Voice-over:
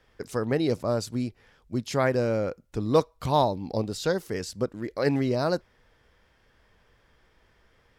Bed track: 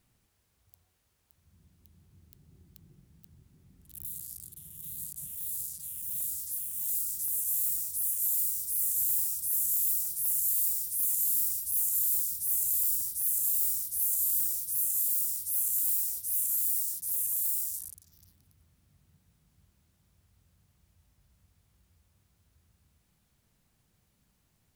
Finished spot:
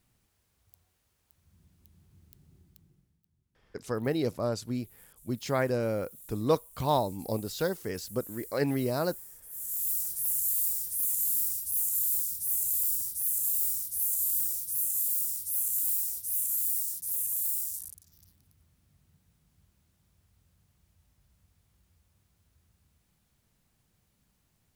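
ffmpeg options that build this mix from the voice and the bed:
-filter_complex "[0:a]adelay=3550,volume=-4dB[a];[1:a]volume=17dB,afade=t=out:st=2.43:d=0.79:silence=0.133352,afade=t=in:st=9.49:d=0.5:silence=0.141254[b];[a][b]amix=inputs=2:normalize=0"

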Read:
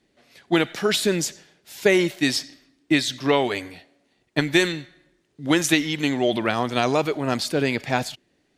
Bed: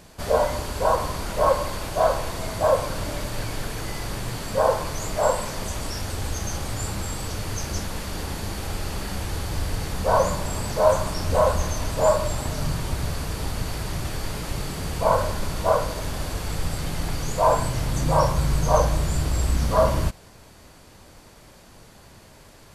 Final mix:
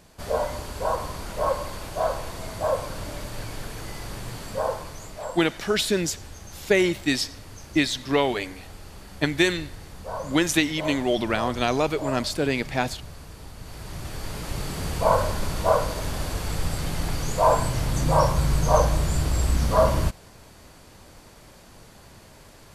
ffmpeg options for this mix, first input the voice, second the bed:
-filter_complex "[0:a]adelay=4850,volume=-2dB[a];[1:a]volume=8.5dB,afade=t=out:st=4.45:d=0.78:silence=0.375837,afade=t=in:st=13.58:d=1.24:silence=0.211349[b];[a][b]amix=inputs=2:normalize=0"

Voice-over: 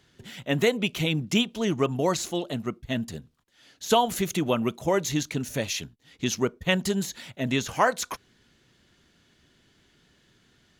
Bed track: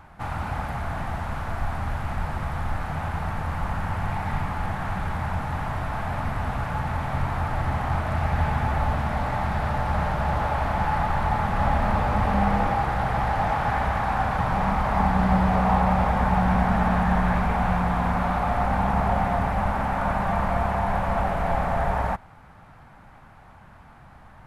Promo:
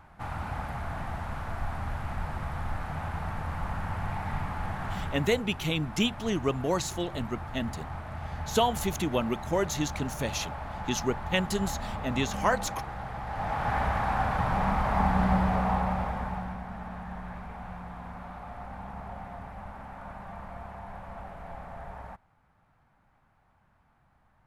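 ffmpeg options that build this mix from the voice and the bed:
-filter_complex "[0:a]adelay=4650,volume=-3.5dB[a];[1:a]volume=4dB,afade=t=out:st=4.99:d=0.43:silence=0.421697,afade=t=in:st=13.25:d=0.53:silence=0.334965,afade=t=out:st=15.22:d=1.37:silence=0.188365[b];[a][b]amix=inputs=2:normalize=0"

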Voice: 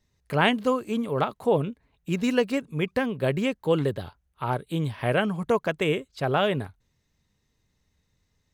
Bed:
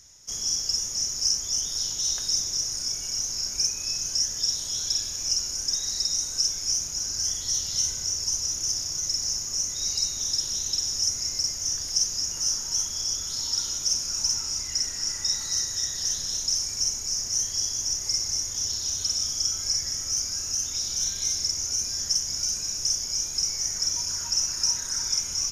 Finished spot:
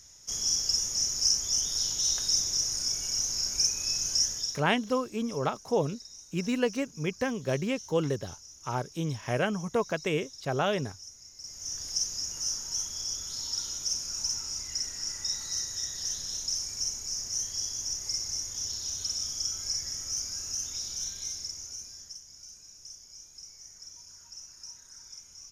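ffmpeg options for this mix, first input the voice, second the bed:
-filter_complex "[0:a]adelay=4250,volume=-4.5dB[a];[1:a]volume=14.5dB,afade=t=out:st=4.24:d=0.39:silence=0.0944061,afade=t=in:st=11.37:d=0.49:silence=0.16788,afade=t=out:st=20.65:d=1.54:silence=0.177828[b];[a][b]amix=inputs=2:normalize=0"

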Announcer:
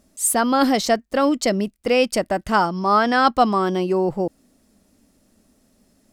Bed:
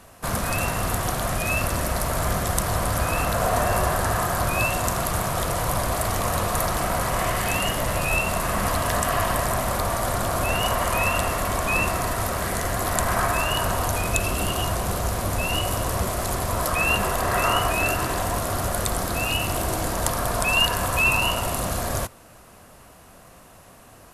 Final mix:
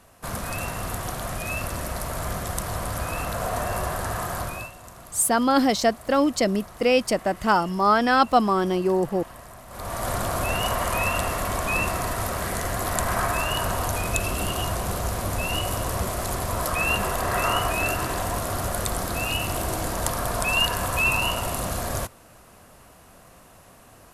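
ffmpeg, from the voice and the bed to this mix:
-filter_complex "[0:a]adelay=4950,volume=-2dB[a];[1:a]volume=12.5dB,afade=t=out:st=4.38:d=0.34:silence=0.188365,afade=t=in:st=9.69:d=0.42:silence=0.125893[b];[a][b]amix=inputs=2:normalize=0"

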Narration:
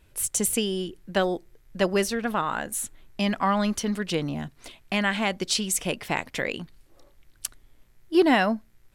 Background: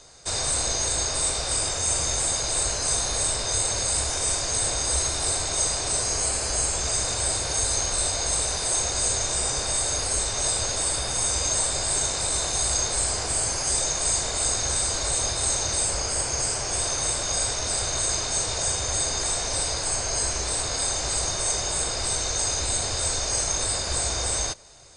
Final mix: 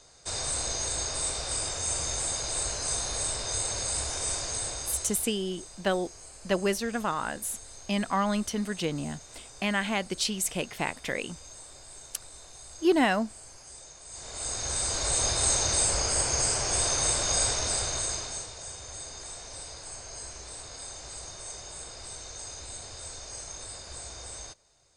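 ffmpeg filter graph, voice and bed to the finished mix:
-filter_complex "[0:a]adelay=4700,volume=-3.5dB[a];[1:a]volume=16.5dB,afade=t=out:st=4.39:d=0.95:silence=0.141254,afade=t=in:st=14.09:d=1.25:silence=0.0749894,afade=t=out:st=17.47:d=1.05:silence=0.177828[b];[a][b]amix=inputs=2:normalize=0"

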